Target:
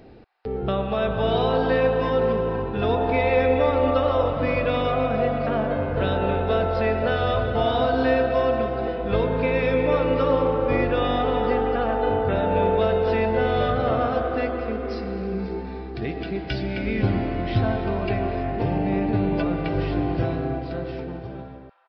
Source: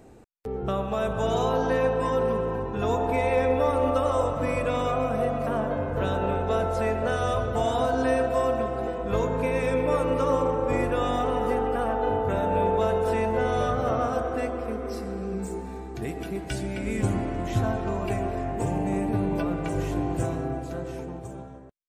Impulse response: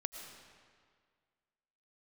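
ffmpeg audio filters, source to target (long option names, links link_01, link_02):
-filter_complex "[0:a]asplit=2[link_01][link_02];[link_02]highpass=frequency=970:width=0.5412,highpass=frequency=970:width=1.3066[link_03];[1:a]atrim=start_sample=2205,asetrate=25137,aresample=44100[link_04];[link_03][link_04]afir=irnorm=-1:irlink=0,volume=-8dB[link_05];[link_01][link_05]amix=inputs=2:normalize=0,aresample=11025,aresample=44100,volume=3.5dB"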